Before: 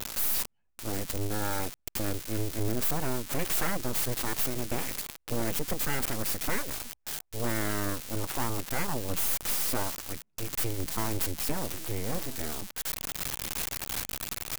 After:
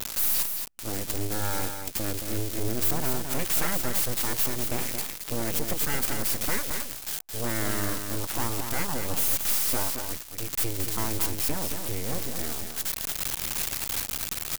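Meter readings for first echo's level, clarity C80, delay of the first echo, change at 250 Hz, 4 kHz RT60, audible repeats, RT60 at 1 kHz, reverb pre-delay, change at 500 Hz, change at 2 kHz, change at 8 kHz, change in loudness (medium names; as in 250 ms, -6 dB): -6.5 dB, no reverb, 222 ms, +1.0 dB, no reverb, 1, no reverb, no reverb, +1.0 dB, +2.0 dB, +4.5 dB, +4.0 dB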